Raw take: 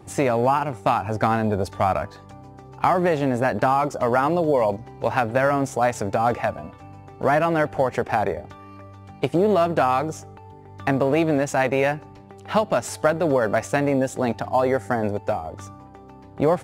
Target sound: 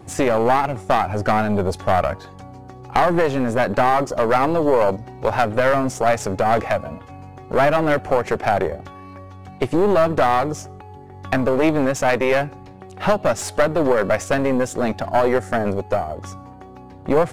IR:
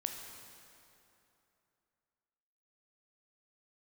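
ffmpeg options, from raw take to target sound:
-af "aeval=exprs='(tanh(5.62*val(0)+0.55)-tanh(0.55))/5.62':channel_layout=same,asetrate=42336,aresample=44100,volume=6.5dB"

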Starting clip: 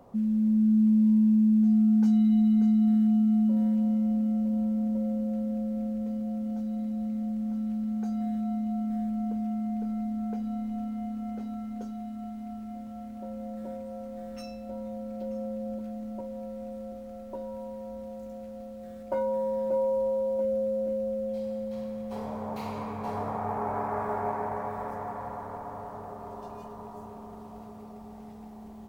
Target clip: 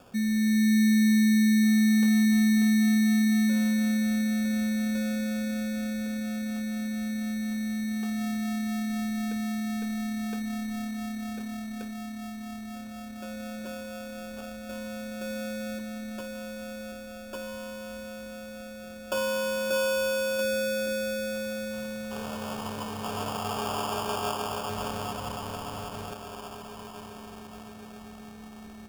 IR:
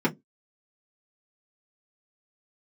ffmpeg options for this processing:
-filter_complex "[0:a]asettb=1/sr,asplit=3[link_01][link_02][link_03];[link_01]atrim=end=24.694[link_04];[link_02]atrim=start=24.69:end=26.14,asetpts=PTS-STARTPTS,afade=type=in:duration=0.004:curve=qsin,afade=type=out:start_time=1.446:duration=0.004:curve=qsin,lowshelf=frequency=330:gain=7.5[link_05];[link_03]atrim=start=26.136[link_06];[link_04][link_05]acrossfade=duration=0.004:curve1=hsin:curve2=qsin[link_07];[link_07][link_06]acrossfade=duration=0.004:curve1=qsin:curve2=hsin,acrusher=samples=22:mix=1:aa=0.000001"

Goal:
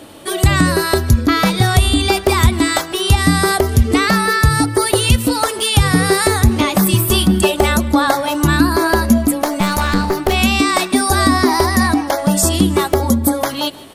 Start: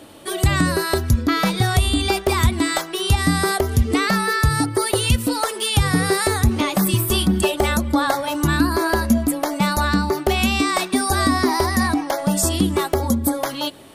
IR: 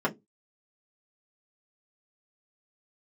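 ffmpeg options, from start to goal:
-filter_complex "[0:a]asettb=1/sr,asplit=3[link_01][link_02][link_03];[link_01]atrim=end=9.454[link_04];[link_02]atrim=start=9.45:end=10.33,asetpts=PTS-STARTPTS,afade=type=in:duration=0.004:curve=qsin,afade=type=out:start_time=0.876:duration=0.004:curve=qsin,aeval=exprs='clip(val(0),-1,0.0841)':channel_layout=same[link_05];[link_03]atrim=start=10.326[link_06];[link_04][link_05]acrossfade=duration=0.004:curve1=hsin:curve2=qsin[link_07];[link_07][link_06]acrossfade=duration=0.004:curve1=qsin:curve2=hsin,asplit=2[link_08][link_09];[link_09]aecho=0:1:156|312|468:0.0891|0.041|0.0189[link_10];[link_08][link_10]amix=inputs=2:normalize=0,volume=5dB"

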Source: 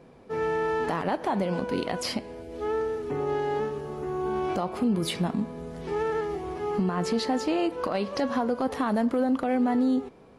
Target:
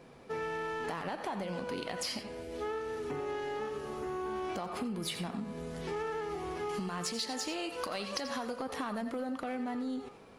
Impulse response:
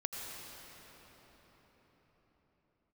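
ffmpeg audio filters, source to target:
-filter_complex "[0:a]asettb=1/sr,asplit=3[link_01][link_02][link_03];[link_01]atrim=end=6.694[link_04];[link_02]atrim=start=6.69:end=8.56,asetpts=PTS-STARTPTS,afade=type=in:duration=0.004:curve=qsin,afade=type=out:start_time=1.866:duration=0.004:curve=qsin,highshelf=frequency=3200:gain=11[link_05];[link_03]atrim=start=8.556[link_06];[link_04][link_05]acrossfade=duration=0.004:curve1=hsin:curve2=qsin[link_07];[link_07][link_06]acrossfade=duration=0.004:curve1=qsin:curve2=hsin,asplit=2[link_08][link_09];[link_09]asoftclip=type=hard:threshold=-29.5dB,volume=-11.5dB[link_10];[link_08][link_10]amix=inputs=2:normalize=0,tiltshelf=frequency=1100:gain=-4[link_11];[1:a]atrim=start_sample=2205,atrim=end_sample=4410[link_12];[link_11][link_12]afir=irnorm=-1:irlink=0,acompressor=threshold=-34dB:ratio=6"

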